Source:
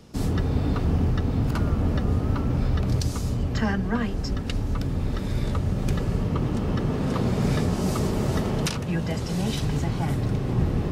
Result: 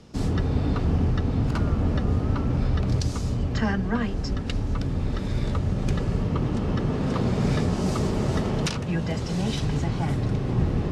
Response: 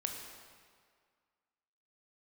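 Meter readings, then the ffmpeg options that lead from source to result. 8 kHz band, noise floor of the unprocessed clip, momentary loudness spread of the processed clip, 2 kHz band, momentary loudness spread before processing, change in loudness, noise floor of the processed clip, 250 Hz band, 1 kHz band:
-2.0 dB, -29 dBFS, 4 LU, 0.0 dB, 4 LU, 0.0 dB, -29 dBFS, 0.0 dB, 0.0 dB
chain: -af "lowpass=7.9k"

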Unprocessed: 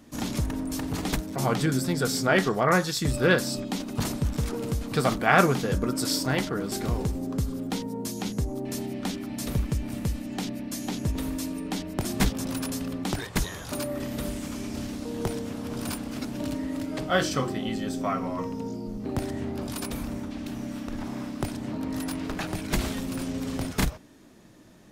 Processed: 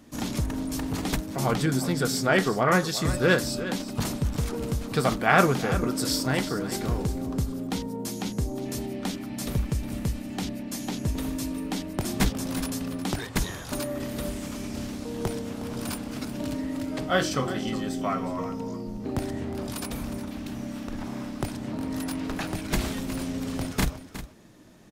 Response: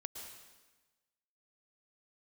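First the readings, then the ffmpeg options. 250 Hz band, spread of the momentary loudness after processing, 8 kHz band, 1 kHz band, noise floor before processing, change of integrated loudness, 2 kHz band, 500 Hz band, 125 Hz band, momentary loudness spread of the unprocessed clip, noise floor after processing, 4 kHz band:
0.0 dB, 11 LU, 0.0 dB, 0.0 dB, -40 dBFS, 0.0 dB, 0.0 dB, 0.0 dB, 0.0 dB, 11 LU, -39 dBFS, 0.0 dB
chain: -af "aecho=1:1:362:0.224"

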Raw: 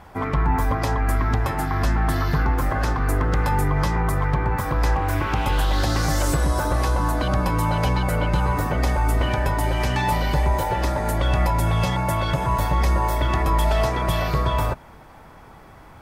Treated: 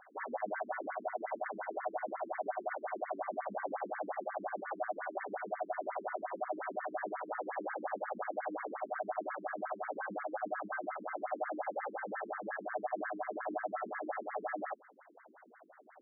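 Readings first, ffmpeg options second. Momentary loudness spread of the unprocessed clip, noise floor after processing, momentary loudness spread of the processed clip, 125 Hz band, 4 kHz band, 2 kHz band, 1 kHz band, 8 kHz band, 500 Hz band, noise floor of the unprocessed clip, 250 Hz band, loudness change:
2 LU, -61 dBFS, 2 LU, under -40 dB, under -40 dB, -14.0 dB, -14.0 dB, under -40 dB, -11.0 dB, -45 dBFS, -20.5 dB, -17.5 dB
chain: -af "asoftclip=type=tanh:threshold=-19dB,aeval=exprs='val(0)*sin(2*PI*680*n/s)':c=same,afftfilt=real='re*between(b*sr/1024,260*pow(1600/260,0.5+0.5*sin(2*PI*5.6*pts/sr))/1.41,260*pow(1600/260,0.5+0.5*sin(2*PI*5.6*pts/sr))*1.41)':imag='im*between(b*sr/1024,260*pow(1600/260,0.5+0.5*sin(2*PI*5.6*pts/sr))/1.41,260*pow(1600/260,0.5+0.5*sin(2*PI*5.6*pts/sr))*1.41)':win_size=1024:overlap=0.75,volume=-6dB"

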